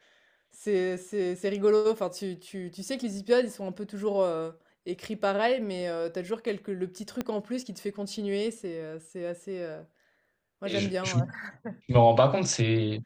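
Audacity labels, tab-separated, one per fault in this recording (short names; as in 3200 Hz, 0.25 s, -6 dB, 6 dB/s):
7.210000	7.210000	pop -17 dBFS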